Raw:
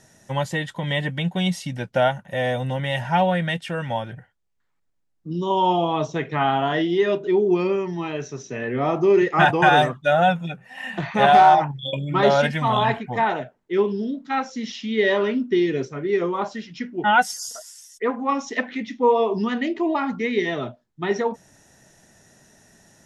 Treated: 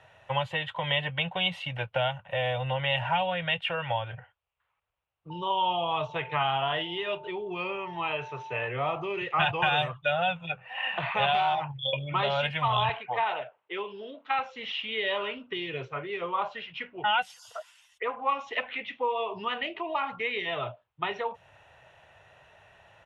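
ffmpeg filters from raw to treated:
-filter_complex "[0:a]asettb=1/sr,asplit=3[a][b][c];[a]atrim=end=5.304[d];[b]atrim=start=5.3:end=8.67,asetpts=PTS-STARTPTS,afade=t=in:d=0.004:c=qsin,afade=t=out:st=3.366:d=0.004:c=qsin,aeval=exprs='val(0)+0.00631*sin(2*PI*890*n/s)':c=same[e];[c]atrim=start=8.666[f];[d][e]acrossfade=d=0.004:c1=hsin:c2=qsin[g];[g][f]acrossfade=d=0.004:c1=qsin:c2=hsin,asettb=1/sr,asplit=3[h][i][j];[h]atrim=end=12.894[k];[i]atrim=start=12.89:end=14.39,asetpts=PTS-STARTPTS,afade=t=in:d=0.004:c=qsin,afade=t=out:st=1.496:d=0.004:c=qsin,highpass=250[l];[j]atrim=start=14.386[m];[k][l]acrossfade=d=0.004:c1=hsin:c2=qsin[n];[n][m]acrossfade=d=0.004:c1=qsin:c2=hsin,highpass=49,acrossover=split=250|3000[o][p][q];[p]acompressor=threshold=-30dB:ratio=6[r];[o][r][q]amix=inputs=3:normalize=0,firequalizer=gain_entry='entry(100,0);entry(220,-22);entry(510,1);entry(1100,7);entry(1800,-1);entry(2700,9);entry(5300,-22)':delay=0.05:min_phase=1"

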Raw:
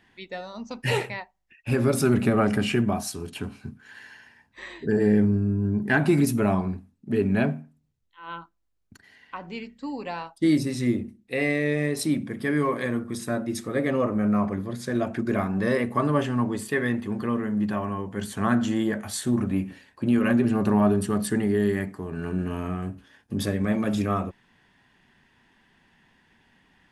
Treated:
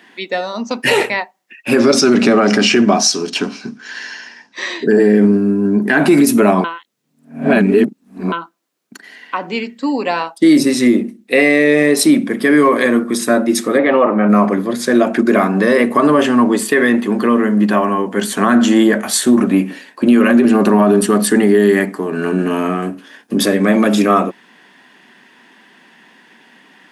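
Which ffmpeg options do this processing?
-filter_complex "[0:a]asettb=1/sr,asplit=3[a][b][c];[a]atrim=end=1.794[d];[b]atrim=start=1.79:end=4.84,asetpts=PTS-STARTPTS,afade=t=in:d=0.004:c=qsin,afade=t=out:st=3.046:d=0.004:c=qsin,lowpass=f=5.6k:t=q:w=4.2[e];[c]atrim=start=4.836[f];[d][e]acrossfade=d=0.004:c1=hsin:c2=qsin[g];[g][f]acrossfade=d=0.004:c1=qsin:c2=hsin,asplit=3[h][i][j];[h]afade=t=out:st=13.77:d=0.02[k];[i]highpass=120,equalizer=f=140:t=q:w=4:g=-5,equalizer=f=260:t=q:w=4:g=-6,equalizer=f=440:t=q:w=4:g=-4,equalizer=f=850:t=q:w=4:g=8,lowpass=f=3.7k:w=0.5412,lowpass=f=3.7k:w=1.3066,afade=t=in:st=13.77:d=0.02,afade=t=out:st=14.28:d=0.02[l];[j]afade=t=in:st=14.28:d=0.02[m];[k][l][m]amix=inputs=3:normalize=0,asplit=3[n][o][p];[n]atrim=end=6.642[q];[o]atrim=start=6.638:end=8.322,asetpts=PTS-STARTPTS,areverse[r];[p]atrim=start=8.318[s];[q][r]acrossfade=d=0.004:c1=hsin:c2=hsin[t];[t][s]acrossfade=d=0.004:c1=hsin:c2=hsin,highpass=f=220:w=0.5412,highpass=f=220:w=1.3066,bandreject=f=840:w=20,alimiter=level_in=17.5dB:limit=-1dB:release=50:level=0:latency=1,volume=-1.5dB"

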